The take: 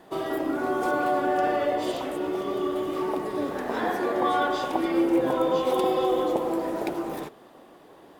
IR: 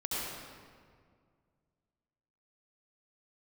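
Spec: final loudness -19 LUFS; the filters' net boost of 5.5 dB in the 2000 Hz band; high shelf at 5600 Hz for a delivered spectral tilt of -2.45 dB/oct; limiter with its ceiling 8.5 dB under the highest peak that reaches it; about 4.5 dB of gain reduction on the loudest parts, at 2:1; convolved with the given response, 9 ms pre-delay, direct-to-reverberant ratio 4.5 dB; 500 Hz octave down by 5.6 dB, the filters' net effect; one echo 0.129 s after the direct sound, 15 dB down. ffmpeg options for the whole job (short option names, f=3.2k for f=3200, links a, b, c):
-filter_complex "[0:a]equalizer=f=500:t=o:g=-8,equalizer=f=2k:t=o:g=8,highshelf=f=5.6k:g=5.5,acompressor=threshold=-29dB:ratio=2,alimiter=level_in=0.5dB:limit=-24dB:level=0:latency=1,volume=-0.5dB,aecho=1:1:129:0.178,asplit=2[a][b];[1:a]atrim=start_sample=2205,adelay=9[c];[b][c]afir=irnorm=-1:irlink=0,volume=-10dB[d];[a][d]amix=inputs=2:normalize=0,volume=12.5dB"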